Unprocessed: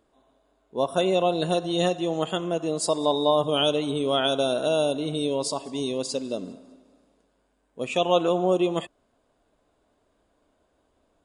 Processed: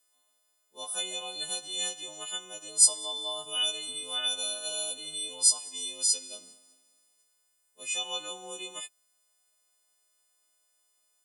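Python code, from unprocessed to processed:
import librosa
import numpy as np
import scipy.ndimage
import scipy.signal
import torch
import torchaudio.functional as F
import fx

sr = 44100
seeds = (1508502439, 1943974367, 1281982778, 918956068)

y = fx.freq_snap(x, sr, grid_st=3)
y = scipy.signal.lfilter([1.0, -0.97], [1.0], y)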